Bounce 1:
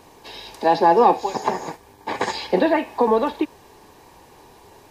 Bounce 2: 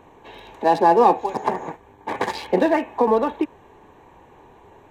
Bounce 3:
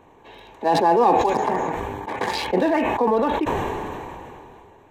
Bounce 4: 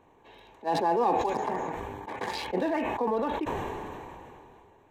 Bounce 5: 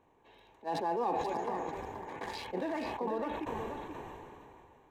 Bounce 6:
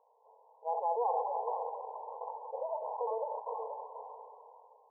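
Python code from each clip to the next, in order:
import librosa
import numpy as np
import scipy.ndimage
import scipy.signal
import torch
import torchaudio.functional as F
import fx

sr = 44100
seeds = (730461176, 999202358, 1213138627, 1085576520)

y1 = fx.wiener(x, sr, points=9)
y2 = fx.sustainer(y1, sr, db_per_s=22.0)
y2 = F.gain(torch.from_numpy(y2), -3.0).numpy()
y3 = fx.attack_slew(y2, sr, db_per_s=380.0)
y3 = F.gain(torch.from_numpy(y3), -8.5).numpy()
y4 = y3 + 10.0 ** (-7.0 / 20.0) * np.pad(y3, (int(479 * sr / 1000.0), 0))[:len(y3)]
y4 = F.gain(torch.from_numpy(y4), -7.5).numpy()
y5 = fx.brickwall_bandpass(y4, sr, low_hz=430.0, high_hz=1100.0)
y5 = F.gain(torch.from_numpy(y5), 1.5).numpy()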